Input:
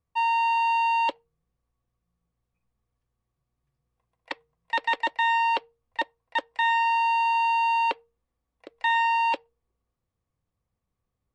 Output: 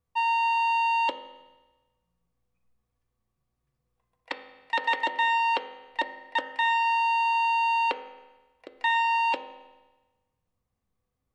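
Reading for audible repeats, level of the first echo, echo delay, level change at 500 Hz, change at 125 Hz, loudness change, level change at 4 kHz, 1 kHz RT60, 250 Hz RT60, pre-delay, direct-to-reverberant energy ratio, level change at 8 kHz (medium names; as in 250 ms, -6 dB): no echo, no echo, no echo, +1.0 dB, no reading, -1.0 dB, +0.5 dB, 1.2 s, 1.2 s, 4 ms, 6.5 dB, no reading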